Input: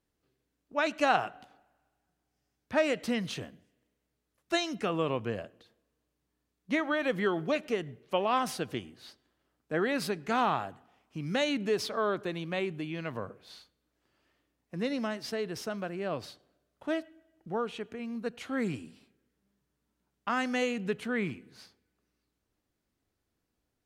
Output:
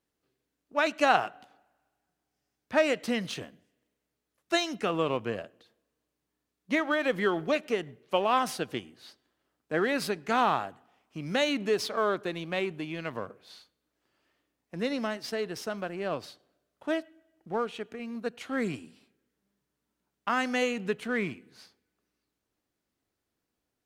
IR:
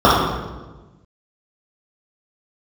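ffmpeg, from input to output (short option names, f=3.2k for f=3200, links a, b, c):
-filter_complex "[0:a]asplit=2[a][b];[b]aeval=exprs='sgn(val(0))*max(abs(val(0))-0.00944,0)':c=same,volume=-6.5dB[c];[a][c]amix=inputs=2:normalize=0,lowshelf=f=130:g=-9"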